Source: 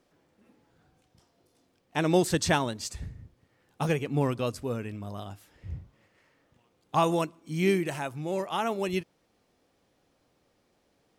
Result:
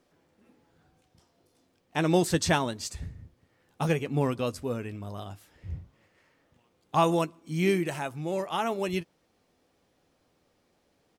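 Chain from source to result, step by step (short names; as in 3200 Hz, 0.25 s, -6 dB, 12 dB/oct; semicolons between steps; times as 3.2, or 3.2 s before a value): doubler 12 ms -14 dB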